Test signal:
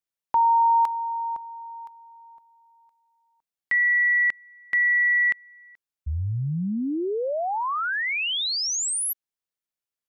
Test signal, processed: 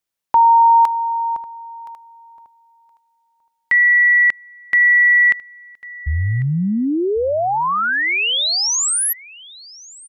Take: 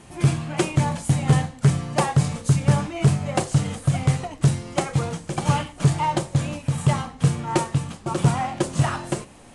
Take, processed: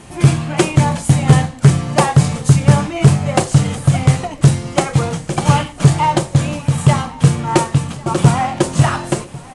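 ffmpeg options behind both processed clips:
-af "aecho=1:1:1097:0.0841,volume=8dB"

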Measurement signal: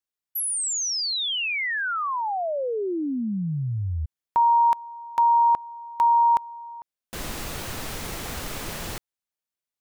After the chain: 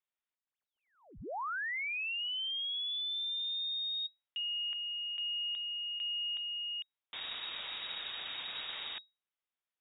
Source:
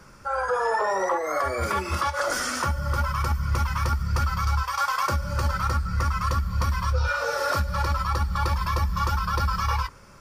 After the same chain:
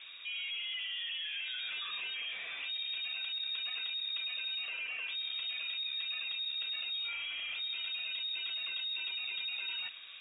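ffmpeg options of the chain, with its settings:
-af "alimiter=limit=-21dB:level=0:latency=1:release=19,areverse,acompressor=threshold=-36dB:ratio=6:attack=0.34:release=30:knee=1:detection=peak,areverse,lowpass=f=3.2k:t=q:w=0.5098,lowpass=f=3.2k:t=q:w=0.6013,lowpass=f=3.2k:t=q:w=0.9,lowpass=f=3.2k:t=q:w=2.563,afreqshift=-3800"

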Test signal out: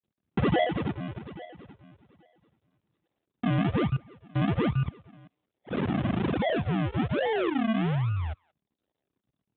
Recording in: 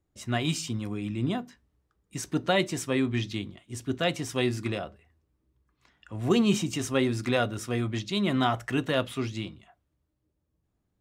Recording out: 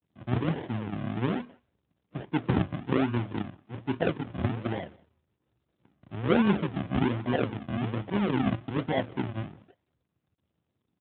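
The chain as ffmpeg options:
-filter_complex "[0:a]aresample=16000,acrusher=samples=24:mix=1:aa=0.000001:lfo=1:lforange=24:lforate=1.2,aresample=44100,aeval=exprs='(mod(3.55*val(0)+1,2)-1)/3.55':c=same,asplit=2[a][b];[b]adelay=180,highpass=300,lowpass=3.4k,asoftclip=type=hard:threshold=-20dB,volume=-26dB[c];[a][c]amix=inputs=2:normalize=0" -ar 8000 -c:a libopencore_amrnb -b:a 12200

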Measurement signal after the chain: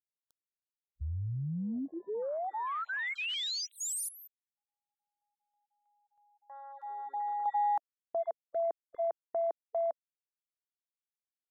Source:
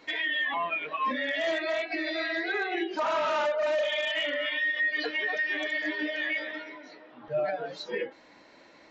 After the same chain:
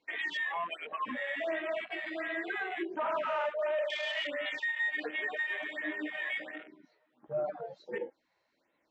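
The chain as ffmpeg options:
-af "afwtdn=0.0178,afftfilt=real='re*(1-between(b*sr/1024,230*pow(5900/230,0.5+0.5*sin(2*PI*1.4*pts/sr))/1.41,230*pow(5900/230,0.5+0.5*sin(2*PI*1.4*pts/sr))*1.41))':imag='im*(1-between(b*sr/1024,230*pow(5900/230,0.5+0.5*sin(2*PI*1.4*pts/sr))/1.41,230*pow(5900/230,0.5+0.5*sin(2*PI*1.4*pts/sr))*1.41))':win_size=1024:overlap=0.75,volume=-4.5dB"

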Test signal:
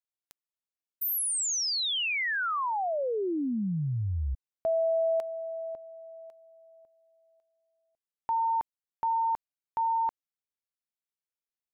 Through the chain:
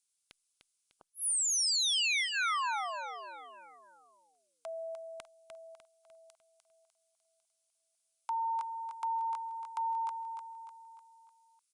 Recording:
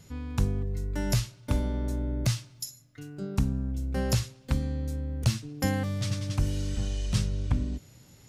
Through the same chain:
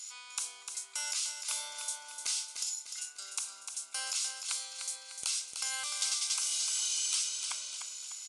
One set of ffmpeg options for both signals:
-filter_complex "[0:a]highpass=f=980:w=0.5412,highpass=f=980:w=1.3066,aemphasis=mode=production:type=75fm,acrossover=split=3200[a][b];[b]acompressor=threshold=-26dB:ratio=4:attack=1:release=60[c];[a][c]amix=inputs=2:normalize=0,highshelf=f=3.2k:g=9,acompressor=threshold=-30dB:ratio=16:attack=23:release=61:knee=6:detection=rms,asoftclip=type=hard:threshold=-19.5dB,aecho=1:1:300|600|900|1200|1500:0.447|0.205|0.0945|0.0435|0.02,aresample=22050,aresample=44100,asuperstop=centerf=1800:order=4:qfactor=4.9" -ar 48000 -c:a libopus -b:a 96k

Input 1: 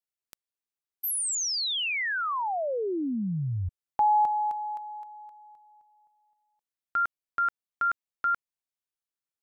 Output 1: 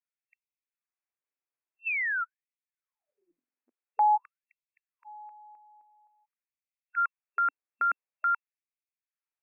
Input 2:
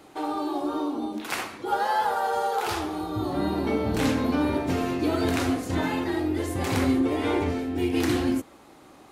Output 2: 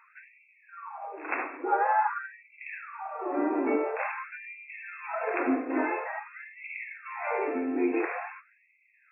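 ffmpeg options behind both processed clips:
-af "afftfilt=real='re*between(b*sr/4096,170,2700)':imag='im*between(b*sr/4096,170,2700)':win_size=4096:overlap=0.75,afftfilt=real='re*gte(b*sr/1024,220*pow(2000/220,0.5+0.5*sin(2*PI*0.48*pts/sr)))':imag='im*gte(b*sr/1024,220*pow(2000/220,0.5+0.5*sin(2*PI*0.48*pts/sr)))':win_size=1024:overlap=0.75"

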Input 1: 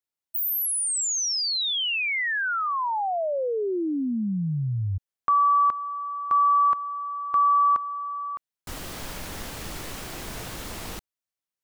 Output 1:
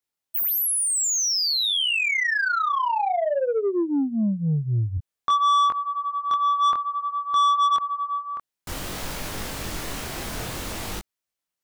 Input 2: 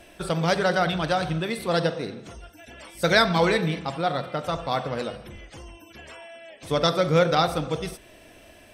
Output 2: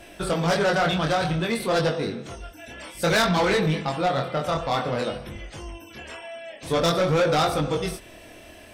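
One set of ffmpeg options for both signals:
-af "flanger=delay=20:depth=5.8:speed=0.54,asoftclip=type=tanh:threshold=-24dB,volume=7.5dB"

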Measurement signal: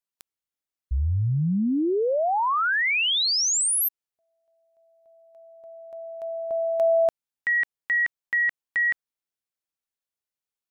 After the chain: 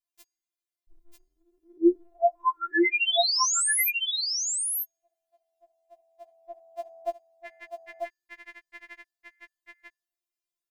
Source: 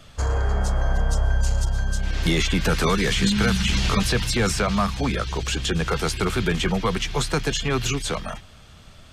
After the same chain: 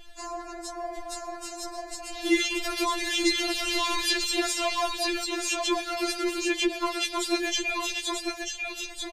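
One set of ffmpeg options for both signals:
-filter_complex "[0:a]equalizer=f=1.4k:w=3.6:g=-8.5,bandreject=f=437.1:t=h:w=4,bandreject=f=874.2:t=h:w=4,bandreject=f=1.3113k:t=h:w=4,bandreject=f=1.7484k:t=h:w=4,bandreject=f=2.1855k:t=h:w=4,bandreject=f=2.6226k:t=h:w=4,bandreject=f=3.0597k:t=h:w=4,bandreject=f=3.4968k:t=h:w=4,bandreject=f=3.9339k:t=h:w=4,bandreject=f=4.371k:t=h:w=4,bandreject=f=4.8081k:t=h:w=4,bandreject=f=5.2452k:t=h:w=4,bandreject=f=5.6823k:t=h:w=4,bandreject=f=6.1194k:t=h:w=4,bandreject=f=6.5565k:t=h:w=4,bandreject=f=6.9936k:t=h:w=4,bandreject=f=7.4307k:t=h:w=4,bandreject=f=7.8678k:t=h:w=4,bandreject=f=8.3049k:t=h:w=4,asplit=2[a][b];[b]aecho=0:1:942:0.668[c];[a][c]amix=inputs=2:normalize=0,afftfilt=real='re*4*eq(mod(b,16),0)':imag='im*4*eq(mod(b,16),0)':win_size=2048:overlap=0.75"

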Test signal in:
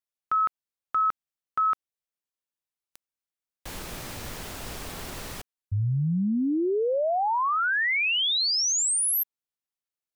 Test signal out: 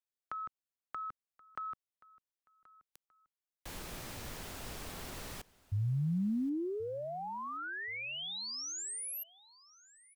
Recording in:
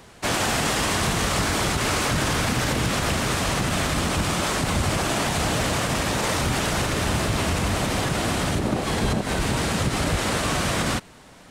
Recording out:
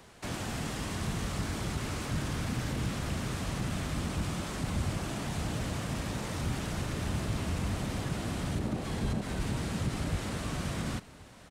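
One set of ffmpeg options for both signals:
-filter_complex "[0:a]acrossover=split=290[a][b];[b]acompressor=threshold=-38dB:ratio=3:attack=9.5:release=24:knee=2.83:detection=peak[c];[a][c]amix=inputs=2:normalize=0,asplit=2[d][e];[e]aecho=0:1:1078|2156:0.0794|0.0278[f];[d][f]amix=inputs=2:normalize=0,volume=-7dB"

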